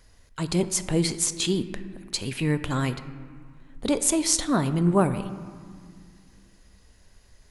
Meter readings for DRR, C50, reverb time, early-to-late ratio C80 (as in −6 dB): 11.0 dB, 12.5 dB, 2.0 s, 13.5 dB